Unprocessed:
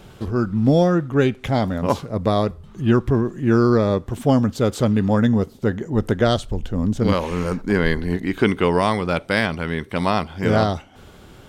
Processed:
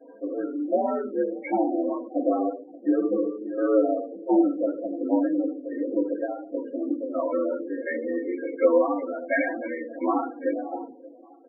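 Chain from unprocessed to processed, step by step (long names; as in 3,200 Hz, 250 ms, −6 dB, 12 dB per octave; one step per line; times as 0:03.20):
mains-hum notches 50/100/150/200/250/300/350/400 Hz
harmonic and percussive parts rebalanced percussive −3 dB
comb filter 4.6 ms, depth 39%
downward compressor 6 to 1, threshold −20 dBFS, peak gain reduction 8.5 dB
shaped tremolo saw down 1.4 Hz, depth 85%
flanger 0.44 Hz, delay 5.3 ms, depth 4.7 ms, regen −74%
slack as between gear wheels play −48 dBFS
single-sideband voice off tune +75 Hz 200–2,800 Hz
on a send: feedback echo with a low-pass in the loop 576 ms, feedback 49%, low-pass 1,300 Hz, level −21 dB
on the sum: rectangular room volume 34 cubic metres, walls mixed, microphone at 2.2 metres
spectral peaks only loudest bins 16
level −4 dB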